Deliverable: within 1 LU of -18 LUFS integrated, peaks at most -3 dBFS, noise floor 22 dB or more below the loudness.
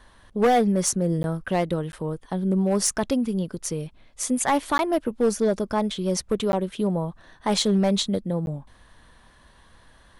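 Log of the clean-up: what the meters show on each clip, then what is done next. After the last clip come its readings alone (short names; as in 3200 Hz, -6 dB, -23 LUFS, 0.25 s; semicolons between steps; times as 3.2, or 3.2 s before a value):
clipped 0.9%; flat tops at -14.5 dBFS; dropouts 5; longest dropout 11 ms; loudness -24.5 LUFS; peak -14.5 dBFS; loudness target -18.0 LUFS
-> clip repair -14.5 dBFS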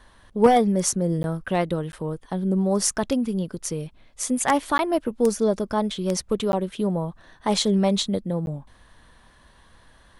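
clipped 0.0%; dropouts 5; longest dropout 11 ms
-> interpolate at 1.23/1.92/4.78/6.52/8.46, 11 ms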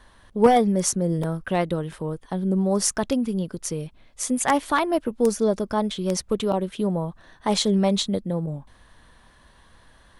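dropouts 0; loudness -24.0 LUFS; peak -5.5 dBFS; loudness target -18.0 LUFS
-> gain +6 dB; limiter -3 dBFS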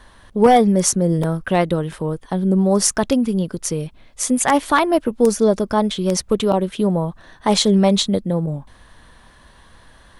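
loudness -18.0 LUFS; peak -3.0 dBFS; noise floor -49 dBFS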